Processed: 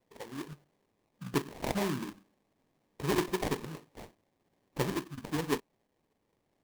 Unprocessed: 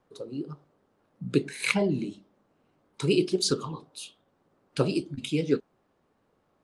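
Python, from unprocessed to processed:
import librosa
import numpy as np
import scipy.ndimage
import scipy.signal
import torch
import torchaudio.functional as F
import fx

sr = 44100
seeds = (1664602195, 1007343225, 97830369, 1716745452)

y = fx.sample_hold(x, sr, seeds[0], rate_hz=1400.0, jitter_pct=20)
y = y * librosa.db_to_amplitude(-6.5)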